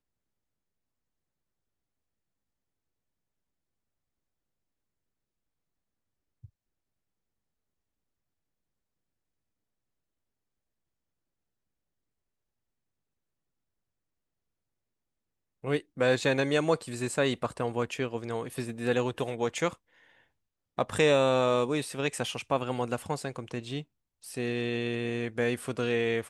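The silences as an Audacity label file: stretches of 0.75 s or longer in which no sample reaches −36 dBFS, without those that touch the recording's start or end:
19.730000	20.780000	silence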